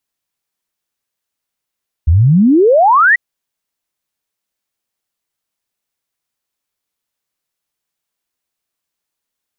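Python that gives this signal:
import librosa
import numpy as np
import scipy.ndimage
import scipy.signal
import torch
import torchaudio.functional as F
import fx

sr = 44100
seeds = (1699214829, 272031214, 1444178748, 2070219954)

y = fx.ess(sr, length_s=1.09, from_hz=73.0, to_hz=2000.0, level_db=-5.5)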